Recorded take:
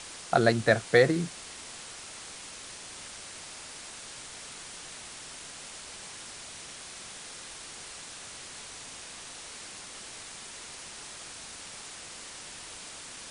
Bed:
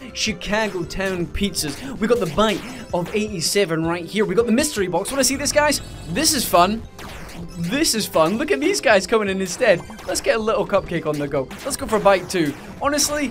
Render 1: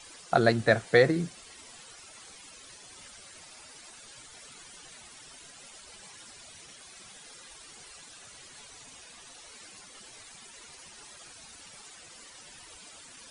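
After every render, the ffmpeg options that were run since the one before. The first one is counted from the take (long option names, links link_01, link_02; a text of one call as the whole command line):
ffmpeg -i in.wav -af "afftdn=noise_reduction=13:noise_floor=-45" out.wav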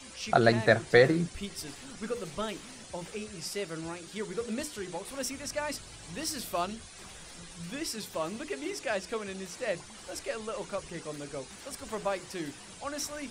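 ffmpeg -i in.wav -i bed.wav -filter_complex "[1:a]volume=-17.5dB[link_01];[0:a][link_01]amix=inputs=2:normalize=0" out.wav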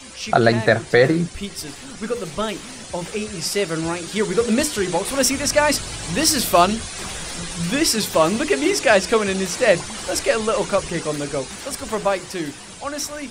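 ffmpeg -i in.wav -af "dynaudnorm=framelen=620:gausssize=9:maxgain=9dB,alimiter=level_in=8.5dB:limit=-1dB:release=50:level=0:latency=1" out.wav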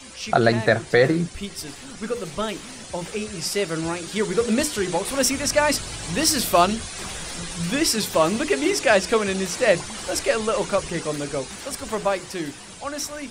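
ffmpeg -i in.wav -af "volume=-2.5dB" out.wav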